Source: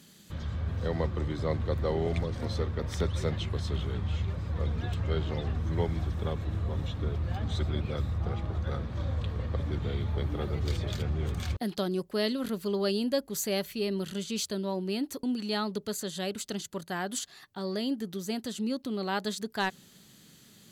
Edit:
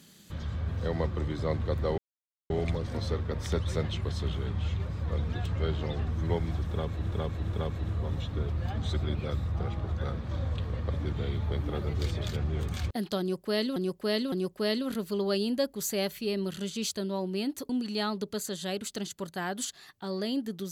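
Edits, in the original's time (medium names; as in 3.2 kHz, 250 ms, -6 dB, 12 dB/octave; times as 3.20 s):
1.98 s: insert silence 0.52 s
6.19–6.60 s: loop, 3 plays
11.86–12.42 s: loop, 3 plays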